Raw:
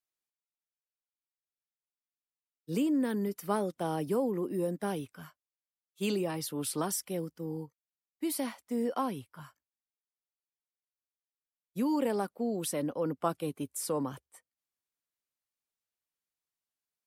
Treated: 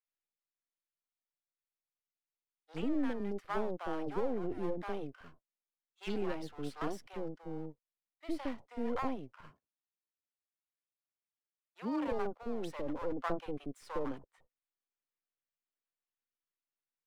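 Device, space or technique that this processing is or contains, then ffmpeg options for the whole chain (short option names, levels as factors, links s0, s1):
crystal radio: -filter_complex "[0:a]highpass=290,lowpass=2700,aeval=exprs='if(lt(val(0),0),0.251*val(0),val(0))':c=same,lowshelf=f=220:g=5,asettb=1/sr,asplit=3[s0][s1][s2];[s0]atrim=end=9.444[s3];[s1]atrim=start=9.44:end=12.06,asetpts=PTS-STARTPTS,afade=t=in:d=0.004:c=qsin,afade=t=out:st=2.616:d=0.004:c=qsin,highpass=84[s4];[s2]atrim=start=12.056[s5];[s3][s4]acrossfade=d=0.004:c1=hsin:c2=qsin[s6];[s6][s5]acrossfade=d=0.004:c1=qsin:c2=hsin,acrossover=split=720[s7][s8];[s7]adelay=60[s9];[s9][s8]amix=inputs=2:normalize=0"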